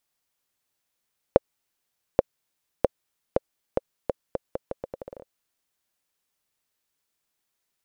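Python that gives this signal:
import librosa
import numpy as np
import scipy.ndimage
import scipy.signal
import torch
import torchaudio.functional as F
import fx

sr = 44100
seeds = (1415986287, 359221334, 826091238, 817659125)

y = fx.bouncing_ball(sr, first_gap_s=0.83, ratio=0.79, hz=532.0, decay_ms=24.0, level_db=-1.0)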